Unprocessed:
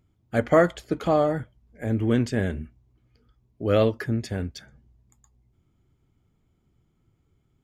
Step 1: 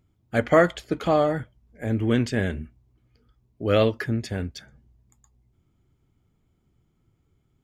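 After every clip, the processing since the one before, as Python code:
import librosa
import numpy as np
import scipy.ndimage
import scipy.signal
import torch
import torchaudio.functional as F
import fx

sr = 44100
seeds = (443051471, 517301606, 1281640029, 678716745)

y = fx.dynamic_eq(x, sr, hz=2800.0, q=0.7, threshold_db=-42.0, ratio=4.0, max_db=5)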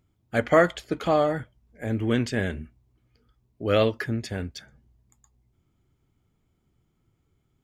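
y = fx.low_shelf(x, sr, hz=430.0, db=-3.0)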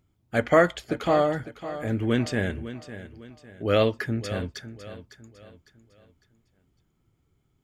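y = fx.echo_feedback(x, sr, ms=554, feedback_pct=38, wet_db=-13.5)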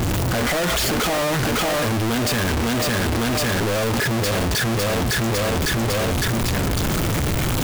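y = np.sign(x) * np.sqrt(np.mean(np.square(x)))
y = y * librosa.db_to_amplitude(7.5)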